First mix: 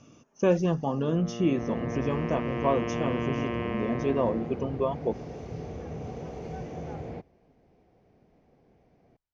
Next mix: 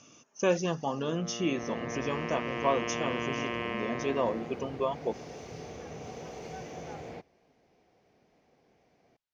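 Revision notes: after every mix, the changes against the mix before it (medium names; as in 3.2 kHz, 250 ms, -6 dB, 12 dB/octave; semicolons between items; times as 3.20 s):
master: add tilt EQ +3 dB/octave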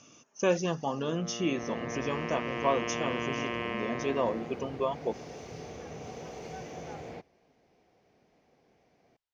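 no change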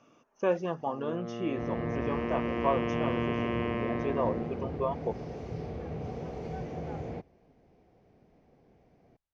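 speech: add band-pass filter 1.1 kHz, Q 0.67; master: add tilt EQ -3 dB/octave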